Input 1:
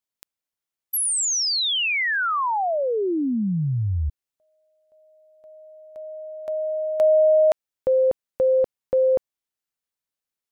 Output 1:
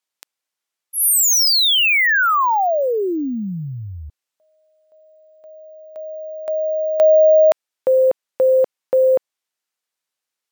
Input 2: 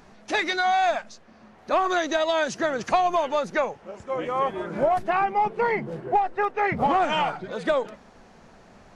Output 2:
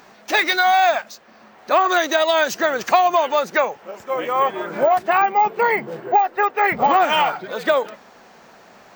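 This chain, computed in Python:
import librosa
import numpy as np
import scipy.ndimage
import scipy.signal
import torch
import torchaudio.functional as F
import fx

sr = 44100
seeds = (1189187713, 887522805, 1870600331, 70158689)

y = fx.highpass(x, sr, hz=560.0, slope=6)
y = np.repeat(scipy.signal.resample_poly(y, 1, 2), 2)[:len(y)]
y = y * librosa.db_to_amplitude(8.0)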